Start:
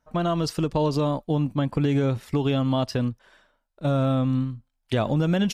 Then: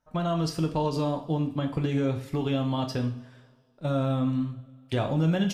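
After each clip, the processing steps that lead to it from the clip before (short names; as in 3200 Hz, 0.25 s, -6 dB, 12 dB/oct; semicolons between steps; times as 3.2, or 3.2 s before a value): two-slope reverb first 0.46 s, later 2.2 s, from -22 dB, DRR 3.5 dB; gain -5 dB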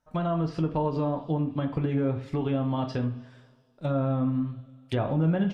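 treble ducked by the level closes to 1700 Hz, closed at -22.5 dBFS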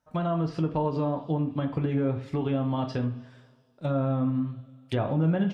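HPF 45 Hz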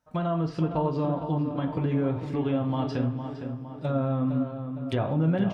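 darkening echo 0.46 s, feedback 55%, low-pass 2700 Hz, level -8 dB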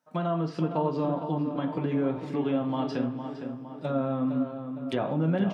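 HPF 160 Hz 24 dB/oct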